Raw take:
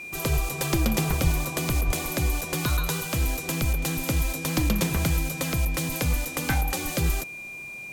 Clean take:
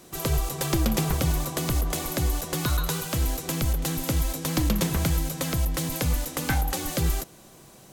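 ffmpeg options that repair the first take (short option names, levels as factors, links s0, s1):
-filter_complex "[0:a]bandreject=f=2400:w=30,asplit=3[s0][s1][s2];[s0]afade=t=out:st=1.23:d=0.02[s3];[s1]highpass=f=140:w=0.5412,highpass=f=140:w=1.3066,afade=t=in:st=1.23:d=0.02,afade=t=out:st=1.35:d=0.02[s4];[s2]afade=t=in:st=1.35:d=0.02[s5];[s3][s4][s5]amix=inputs=3:normalize=0,asplit=3[s6][s7][s8];[s6]afade=t=out:st=1.86:d=0.02[s9];[s7]highpass=f=140:w=0.5412,highpass=f=140:w=1.3066,afade=t=in:st=1.86:d=0.02,afade=t=out:st=1.98:d=0.02[s10];[s8]afade=t=in:st=1.98:d=0.02[s11];[s9][s10][s11]amix=inputs=3:normalize=0"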